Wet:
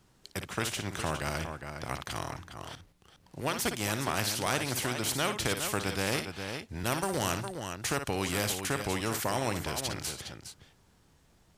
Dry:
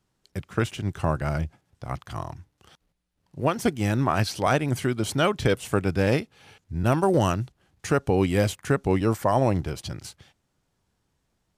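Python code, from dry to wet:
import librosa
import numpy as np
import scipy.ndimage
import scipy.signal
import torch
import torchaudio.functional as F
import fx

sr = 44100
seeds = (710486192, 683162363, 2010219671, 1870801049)

y = fx.echo_multitap(x, sr, ms=(57, 410), db=(-13.0, -14.0))
y = fx.spectral_comp(y, sr, ratio=2.0)
y = y * 10.0 ** (-5.0 / 20.0)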